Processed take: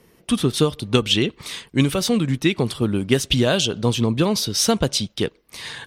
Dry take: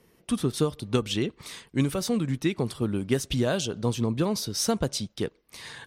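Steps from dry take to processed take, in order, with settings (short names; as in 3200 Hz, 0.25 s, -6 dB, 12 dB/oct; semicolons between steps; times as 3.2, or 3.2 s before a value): dynamic EQ 3100 Hz, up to +7 dB, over -48 dBFS, Q 1.4; gain +6.5 dB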